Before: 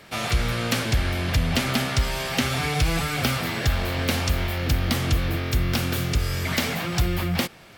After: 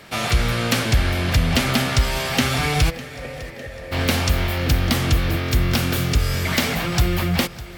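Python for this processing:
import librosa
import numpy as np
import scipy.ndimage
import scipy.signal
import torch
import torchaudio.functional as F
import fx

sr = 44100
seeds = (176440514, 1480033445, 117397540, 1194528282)

p1 = fx.formant_cascade(x, sr, vowel='e', at=(2.89, 3.91), fade=0.02)
p2 = p1 + fx.echo_feedback(p1, sr, ms=604, feedback_pct=56, wet_db=-18.0, dry=0)
y = p2 * 10.0 ** (4.0 / 20.0)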